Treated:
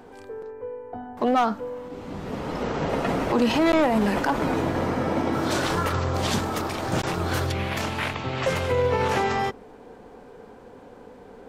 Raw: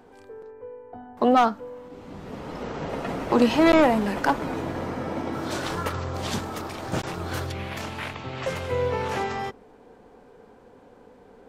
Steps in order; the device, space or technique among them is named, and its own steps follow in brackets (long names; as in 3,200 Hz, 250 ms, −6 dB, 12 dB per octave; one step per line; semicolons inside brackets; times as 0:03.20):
clipper into limiter (hard clipping −11.5 dBFS, distortion −25 dB; brickwall limiter −19.5 dBFS, peak gain reduction 8 dB)
level +5.5 dB